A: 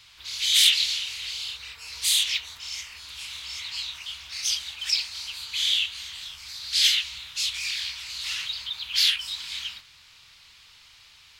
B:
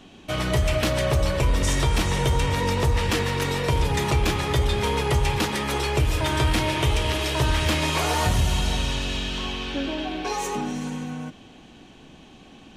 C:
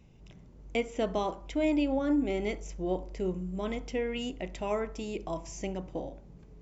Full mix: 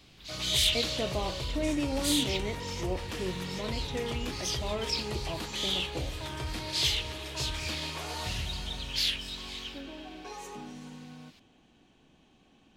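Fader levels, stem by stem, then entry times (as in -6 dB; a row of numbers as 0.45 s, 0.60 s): -8.0 dB, -15.0 dB, -3.5 dB; 0.00 s, 0.00 s, 0.00 s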